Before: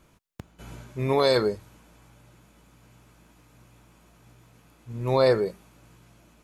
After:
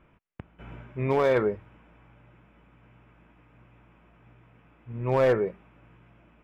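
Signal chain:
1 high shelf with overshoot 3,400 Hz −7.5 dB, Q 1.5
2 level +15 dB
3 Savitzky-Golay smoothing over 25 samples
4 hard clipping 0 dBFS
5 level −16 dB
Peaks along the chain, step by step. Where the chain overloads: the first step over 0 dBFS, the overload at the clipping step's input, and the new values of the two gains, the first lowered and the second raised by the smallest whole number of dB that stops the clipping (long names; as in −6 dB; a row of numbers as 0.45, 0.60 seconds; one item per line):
−10.0, +5.0, +5.0, 0.0, −16.0 dBFS
step 2, 5.0 dB
step 2 +10 dB, step 5 −11 dB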